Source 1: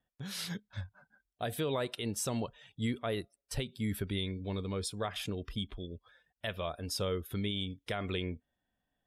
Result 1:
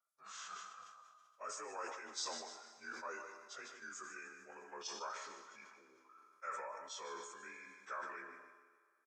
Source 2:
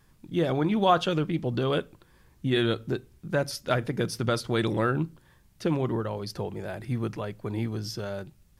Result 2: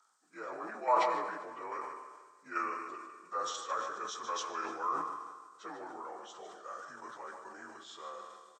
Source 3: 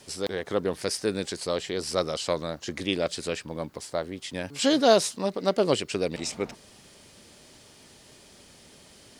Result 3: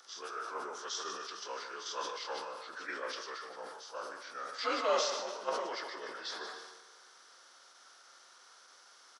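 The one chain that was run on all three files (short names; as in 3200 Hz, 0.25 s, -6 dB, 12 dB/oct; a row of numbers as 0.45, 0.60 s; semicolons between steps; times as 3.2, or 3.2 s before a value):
inharmonic rescaling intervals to 86%; HPF 430 Hz 12 dB/oct; differentiator; in parallel at -1 dB: level quantiser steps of 21 dB; on the sum: resonant high shelf 1800 Hz -10.5 dB, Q 3; feedback echo 0.15 s, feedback 37%, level -11 dB; Schroeder reverb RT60 2.2 s, combs from 27 ms, DRR 11 dB; sustainer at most 41 dB/s; gain +7 dB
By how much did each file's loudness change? -10.0, -9.5, -10.5 LU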